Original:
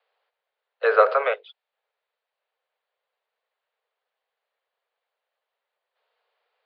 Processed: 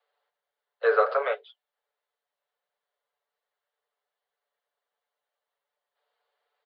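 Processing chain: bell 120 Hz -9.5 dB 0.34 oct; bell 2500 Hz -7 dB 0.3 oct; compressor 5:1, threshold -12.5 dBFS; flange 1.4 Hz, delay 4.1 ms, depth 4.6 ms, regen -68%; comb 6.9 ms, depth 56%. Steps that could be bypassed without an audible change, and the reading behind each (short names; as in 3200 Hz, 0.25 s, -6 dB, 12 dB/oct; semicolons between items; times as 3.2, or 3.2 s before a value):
bell 120 Hz: input band starts at 380 Hz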